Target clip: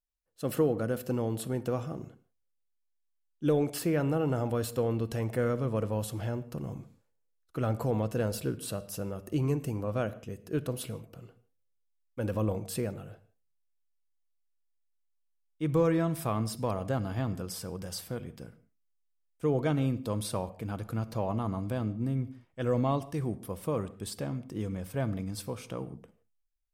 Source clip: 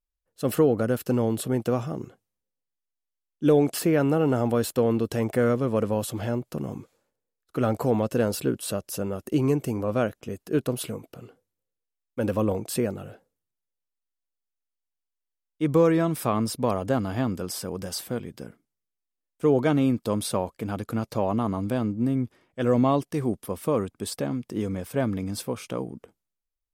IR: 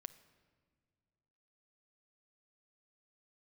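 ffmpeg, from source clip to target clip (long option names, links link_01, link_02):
-filter_complex "[0:a]asubboost=boost=2.5:cutoff=130[link_01];[1:a]atrim=start_sample=2205,afade=type=out:start_time=0.25:duration=0.01,atrim=end_sample=11466,asetrate=48510,aresample=44100[link_02];[link_01][link_02]afir=irnorm=-1:irlink=0"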